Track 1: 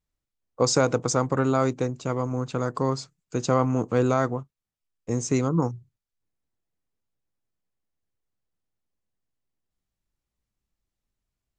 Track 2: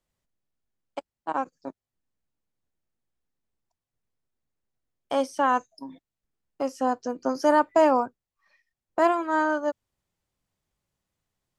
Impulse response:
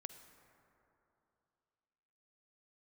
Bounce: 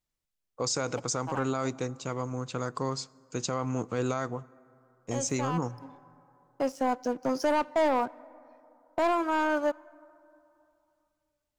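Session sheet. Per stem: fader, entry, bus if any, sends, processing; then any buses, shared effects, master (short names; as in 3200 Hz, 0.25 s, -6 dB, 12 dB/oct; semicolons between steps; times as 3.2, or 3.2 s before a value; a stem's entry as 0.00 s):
-4.5 dB, 0.00 s, send -10 dB, tilt shelf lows -4 dB, about 1400 Hz
-8.0 dB, 0.00 s, send -9.5 dB, sample leveller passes 2; auto duck -15 dB, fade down 1.90 s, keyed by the first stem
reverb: on, RT60 2.9 s, pre-delay 42 ms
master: limiter -19 dBFS, peak gain reduction 8 dB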